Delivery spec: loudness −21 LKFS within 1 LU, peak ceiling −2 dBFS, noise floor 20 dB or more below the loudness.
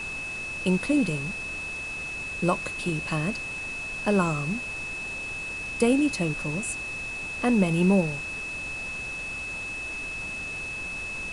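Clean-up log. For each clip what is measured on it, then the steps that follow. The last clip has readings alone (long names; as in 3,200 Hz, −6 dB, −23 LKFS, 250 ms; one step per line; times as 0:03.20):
interfering tone 2,600 Hz; level of the tone −32 dBFS; background noise floor −34 dBFS; target noise floor −48 dBFS; integrated loudness −27.5 LKFS; sample peak −9.5 dBFS; target loudness −21.0 LKFS
→ notch filter 2,600 Hz, Q 30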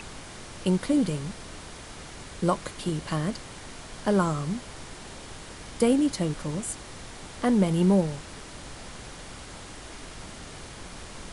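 interfering tone none found; background noise floor −43 dBFS; target noise floor −47 dBFS
→ noise reduction from a noise print 6 dB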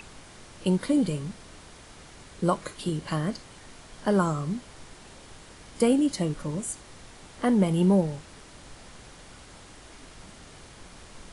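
background noise floor −49 dBFS; integrated loudness −27.0 LKFS; sample peak −10.0 dBFS; target loudness −21.0 LKFS
→ level +6 dB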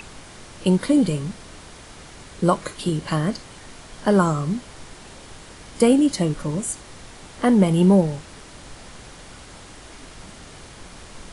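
integrated loudness −21.0 LKFS; sample peak −4.0 dBFS; background noise floor −43 dBFS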